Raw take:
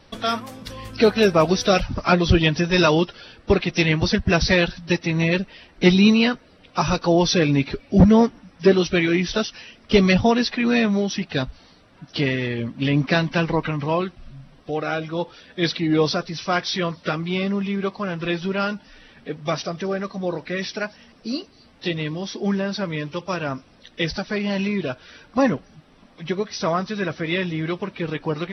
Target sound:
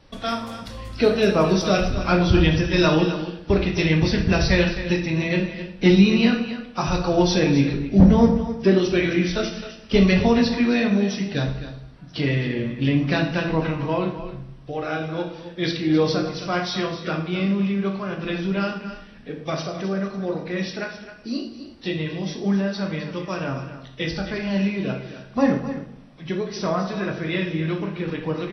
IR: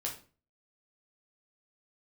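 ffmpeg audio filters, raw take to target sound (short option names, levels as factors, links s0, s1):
-filter_complex "[0:a]aecho=1:1:262:0.251,asplit=2[s0][s1];[1:a]atrim=start_sample=2205,asetrate=22050,aresample=44100,lowshelf=f=260:g=8[s2];[s1][s2]afir=irnorm=-1:irlink=0,volume=0.668[s3];[s0][s3]amix=inputs=2:normalize=0,volume=0.335"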